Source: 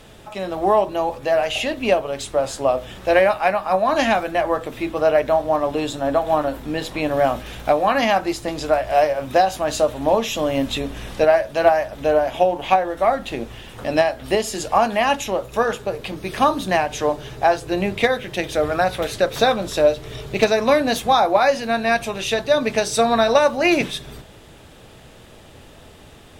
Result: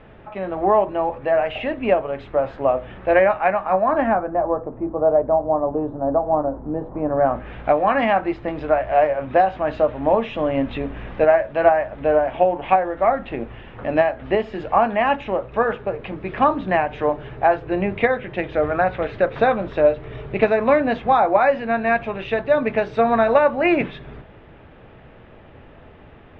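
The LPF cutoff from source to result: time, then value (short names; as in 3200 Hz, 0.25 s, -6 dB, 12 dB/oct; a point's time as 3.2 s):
LPF 24 dB/oct
3.69 s 2300 Hz
4.52 s 1000 Hz
6.91 s 1000 Hz
7.58 s 2400 Hz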